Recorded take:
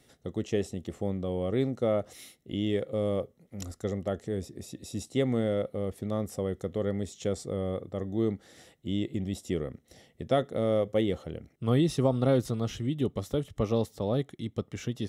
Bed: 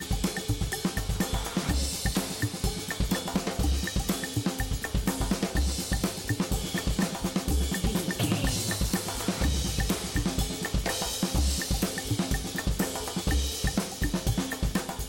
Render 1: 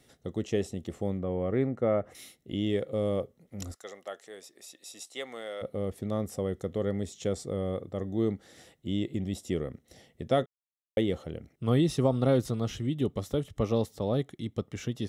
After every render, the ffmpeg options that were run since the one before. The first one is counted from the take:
-filter_complex "[0:a]asettb=1/sr,asplit=3[s0][s1][s2];[s0]atrim=end=1.194[s3];[s1]atrim=start=1.19:end=2.15,asetpts=PTS-STARTPTS,afade=t=in:d=0.004:c=qsin,afade=t=out:st=0.956:d=0.004:c=qsin,highshelf=f=2800:t=q:w=1.5:g=-12[s4];[s2]atrim=start=2.146[s5];[s3][s4]acrossfade=d=0.004:c1=hsin:c2=qsin[s6];[s6][s5]acrossfade=d=0.004:c1=qsin:c2=hsin,asplit=3[s7][s8][s9];[s7]afade=t=out:st=3.74:d=0.02[s10];[s8]highpass=850,afade=t=in:st=3.74:d=0.02,afade=t=out:st=5.61:d=0.02[s11];[s9]afade=t=in:st=5.61:d=0.02[s12];[s10][s11][s12]amix=inputs=3:normalize=0,asplit=3[s13][s14][s15];[s13]atrim=end=10.46,asetpts=PTS-STARTPTS,afade=t=out:st=10.456:d=0.004:c=hsin[s16];[s14]atrim=start=10.46:end=10.97,asetpts=PTS-STARTPTS,volume=0[s17];[s15]atrim=start=10.97,asetpts=PTS-STARTPTS,afade=t=in:d=0.004:c=hsin[s18];[s16][s17][s18]concat=n=3:v=0:a=1"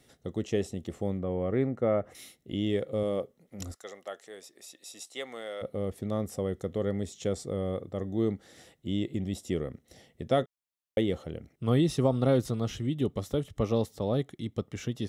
-filter_complex "[0:a]asettb=1/sr,asplit=3[s0][s1][s2];[s0]atrim=end=3.034[s3];[s1]atrim=start=3.03:end=3.6,asetpts=PTS-STARTPTS,afade=t=in:d=0.004:c=qsin,afade=t=out:st=0.566:d=0.004:c=qsin,equalizer=f=73:w=0.9:g=-11.5[s4];[s2]atrim=start=3.596[s5];[s3][s4]acrossfade=d=0.004:c1=hsin:c2=qsin[s6];[s6][s5]acrossfade=d=0.004:c1=qsin:c2=hsin"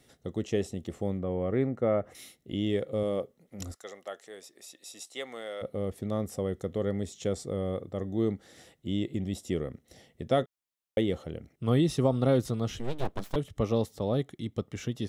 -filter_complex "[0:a]asettb=1/sr,asplit=3[s0][s1][s2];[s0]atrim=end=12.794[s3];[s1]atrim=start=12.79:end=13.36,asetpts=PTS-STARTPTS,afade=t=in:d=0.004:c=qsin,afade=t=out:st=0.566:d=0.004:c=qsin,aeval=exprs='abs(val(0))':c=same[s4];[s2]atrim=start=13.356[s5];[s3][s4]acrossfade=d=0.004:c1=hsin:c2=qsin[s6];[s6][s5]acrossfade=d=0.004:c1=qsin:c2=hsin"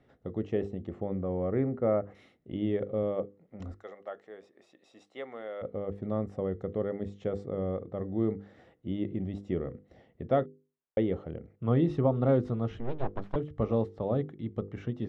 -af "lowpass=1600,bandreject=f=50:t=h:w=6,bandreject=f=100:t=h:w=6,bandreject=f=150:t=h:w=6,bandreject=f=200:t=h:w=6,bandreject=f=250:t=h:w=6,bandreject=f=300:t=h:w=6,bandreject=f=350:t=h:w=6,bandreject=f=400:t=h:w=6,bandreject=f=450:t=h:w=6,bandreject=f=500:t=h:w=6"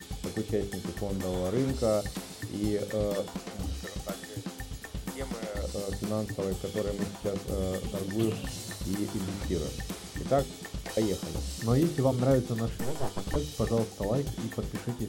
-filter_complex "[1:a]volume=0.335[s0];[0:a][s0]amix=inputs=2:normalize=0"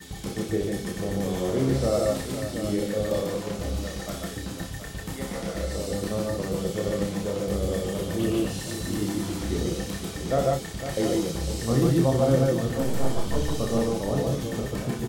-filter_complex "[0:a]asplit=2[s0][s1];[s1]adelay=30,volume=0.531[s2];[s0][s2]amix=inputs=2:normalize=0,aecho=1:1:61|143|149|504|722:0.398|0.668|0.668|0.299|0.355"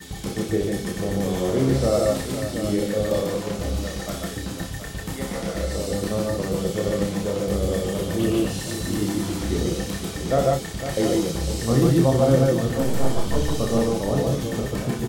-af "volume=1.5"

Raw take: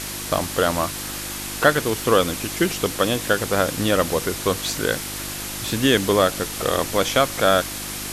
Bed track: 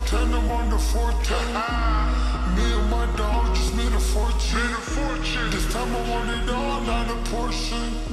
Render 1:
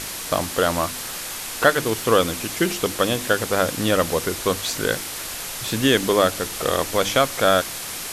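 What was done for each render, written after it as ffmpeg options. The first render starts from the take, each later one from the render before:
-af "bandreject=f=50:t=h:w=4,bandreject=f=100:t=h:w=4,bandreject=f=150:t=h:w=4,bandreject=f=200:t=h:w=4,bandreject=f=250:t=h:w=4,bandreject=f=300:t=h:w=4,bandreject=f=350:t=h:w=4"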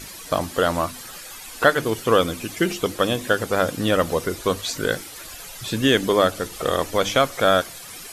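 -af "afftdn=nr=12:nf=-32"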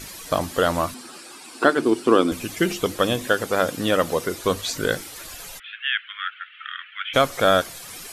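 -filter_complex "[0:a]asettb=1/sr,asplit=3[s0][s1][s2];[s0]atrim=end=0.944[s3];[s1]atrim=start=0.94:end=2.32,asetpts=PTS-STARTPTS,afade=t=in:d=0.004:c=qsin,afade=t=out:st=1.376:d=0.004:c=qsin,highpass=220,equalizer=f=250:t=q:w=4:g=9,equalizer=f=350:t=q:w=4:g=10,equalizer=f=530:t=q:w=4:g=-5,equalizer=f=1900:t=q:w=4:g=-7,equalizer=f=3300:t=q:w=4:g=-5,equalizer=f=6500:t=q:w=4:g=-8,lowpass=f=9500:w=0.5412,lowpass=f=9500:w=1.3066[s4];[s2]atrim=start=2.316[s5];[s3][s4]acrossfade=d=0.004:c1=hsin:c2=qsin[s6];[s6][s5]acrossfade=d=0.004:c1=qsin:c2=hsin,asettb=1/sr,asplit=3[s7][s8][s9];[s7]atrim=end=3.274[s10];[s8]atrim=start=3.27:end=4.43,asetpts=PTS-STARTPTS,afade=t=in:d=0.004:c=qsin,afade=t=out:st=1.156:d=0.004:c=qsin,highpass=f=160:p=1[s11];[s9]atrim=start=4.426[s12];[s10][s11]acrossfade=d=0.004:c1=hsin:c2=qsin[s13];[s13][s12]acrossfade=d=0.004:c1=qsin:c2=hsin,asplit=3[s14][s15][s16];[s14]afade=t=out:st=5.58:d=0.02[s17];[s15]asuperpass=centerf=2100:order=12:qfactor=1.1,afade=t=in:st=5.58:d=0.02,afade=t=out:st=7.13:d=0.02[s18];[s16]afade=t=in:st=7.13:d=0.02[s19];[s17][s18][s19]amix=inputs=3:normalize=0"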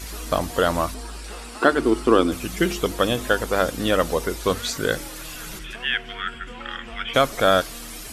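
-filter_complex "[1:a]volume=0.188[s0];[0:a][s0]amix=inputs=2:normalize=0"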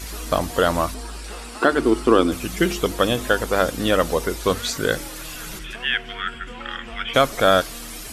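-af "volume=1.19,alimiter=limit=0.708:level=0:latency=1"

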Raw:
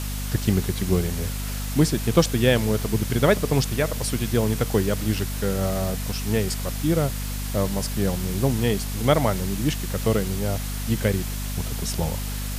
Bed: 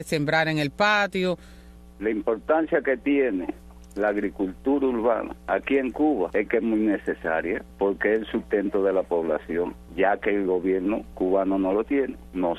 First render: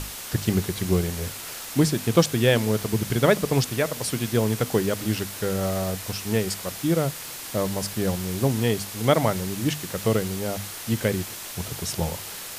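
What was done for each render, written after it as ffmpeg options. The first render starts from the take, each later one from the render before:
-af "bandreject=f=50:t=h:w=6,bandreject=f=100:t=h:w=6,bandreject=f=150:t=h:w=6,bandreject=f=200:t=h:w=6,bandreject=f=250:t=h:w=6"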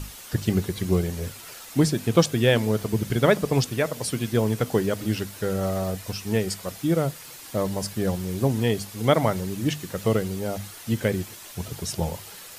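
-af "afftdn=nr=8:nf=-37"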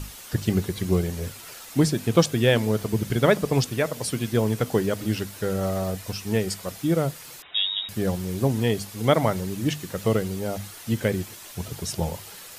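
-filter_complex "[0:a]asettb=1/sr,asplit=3[s0][s1][s2];[s0]atrim=end=7.424[s3];[s1]atrim=start=7.42:end=7.89,asetpts=PTS-STARTPTS,afade=t=in:d=0.004:c=qsin,afade=t=out:st=0.466:d=0.004:c=qsin,lowpass=f=3300:t=q:w=0.5098,lowpass=f=3300:t=q:w=0.6013,lowpass=f=3300:t=q:w=0.9,lowpass=f=3300:t=q:w=2.563,afreqshift=-3900[s4];[s2]atrim=start=7.886[s5];[s3][s4]acrossfade=d=0.004:c1=hsin:c2=qsin[s6];[s6][s5]acrossfade=d=0.004:c1=qsin:c2=hsin"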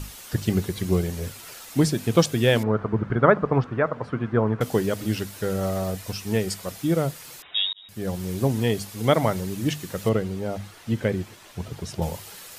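-filter_complex "[0:a]asettb=1/sr,asplit=3[s0][s1][s2];[s0]atrim=end=2.634[s3];[s1]atrim=start=2.63:end=4.61,asetpts=PTS-STARTPTS,afade=t=in:d=0.004:c=qsin,afade=t=out:st=1.976:d=0.004:c=qsin,lowpass=f=1300:t=q:w=2.6[s4];[s2]atrim=start=4.606[s5];[s3][s4]acrossfade=d=0.004:c1=hsin:c2=qsin[s6];[s6][s5]acrossfade=d=0.004:c1=qsin:c2=hsin,asettb=1/sr,asplit=3[s7][s8][s9];[s7]atrim=end=10.094[s10];[s8]atrim=start=10.09:end=12.02,asetpts=PTS-STARTPTS,afade=t=in:d=0.004:c=qsin,afade=t=out:st=1.926:d=0.004:c=qsin,lowpass=f=2700:p=1[s11];[s9]atrim=start=12.016[s12];[s10][s11]acrossfade=d=0.004:c1=hsin:c2=qsin[s13];[s13][s12]acrossfade=d=0.004:c1=qsin:c2=hsin,asplit=2[s14][s15];[s14]atrim=end=7.73,asetpts=PTS-STARTPTS,afade=t=out:st=7.726:d=0.004:c=hsin[s16];[s15]atrim=start=7.73,asetpts=PTS-STARTPTS,afade=t=in:d=0.53[s17];[s16][s17]concat=n=2:v=0:a=1"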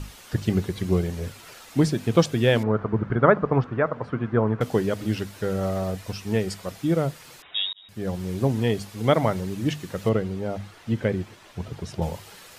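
-af "lowpass=f=4000:p=1"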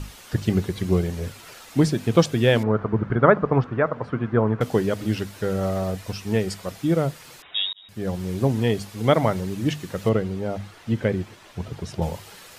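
-af "volume=1.19"

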